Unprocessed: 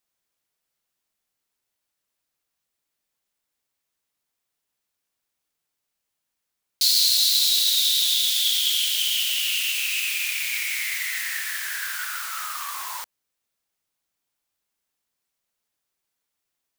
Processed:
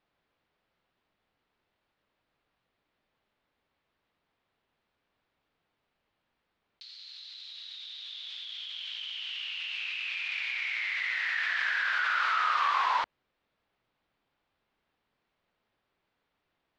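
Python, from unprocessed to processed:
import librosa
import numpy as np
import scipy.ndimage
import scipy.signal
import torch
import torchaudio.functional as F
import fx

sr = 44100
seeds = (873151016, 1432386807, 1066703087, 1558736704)

y = fx.over_compress(x, sr, threshold_db=-32.0, ratio=-1.0)
y = scipy.signal.sosfilt(scipy.signal.butter(4, 4000.0, 'lowpass', fs=sr, output='sos'), y)
y = fx.high_shelf(y, sr, hz=2400.0, db=-11.0)
y = y * 10.0 ** (4.5 / 20.0)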